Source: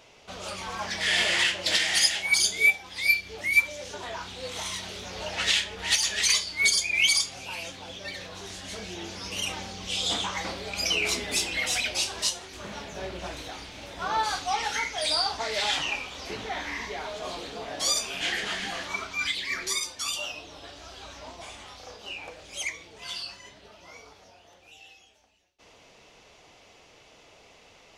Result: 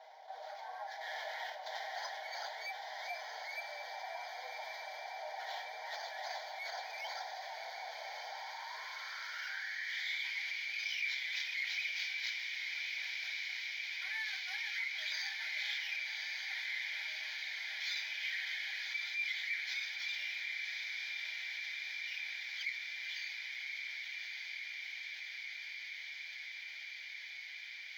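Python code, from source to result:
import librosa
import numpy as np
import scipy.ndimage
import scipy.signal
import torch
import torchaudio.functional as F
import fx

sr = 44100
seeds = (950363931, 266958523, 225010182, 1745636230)

y = fx.lower_of_two(x, sr, delay_ms=6.4)
y = np.repeat(y[::4], 4)[:len(y)]
y = scipy.signal.sosfilt(scipy.signal.butter(4, 500.0, 'highpass', fs=sr, output='sos'), y)
y = fx.peak_eq(y, sr, hz=640.0, db=-13.0, octaves=2.2)
y = fx.fixed_phaser(y, sr, hz=1800.0, stages=8)
y = fx.echo_diffused(y, sr, ms=1121, feedback_pct=74, wet_db=-6.5)
y = fx.filter_sweep_bandpass(y, sr, from_hz=740.0, to_hz=2400.0, start_s=8.23, end_s=10.32, q=6.0)
y = fx.env_flatten(y, sr, amount_pct=50)
y = F.gain(torch.from_numpy(y), 4.0).numpy()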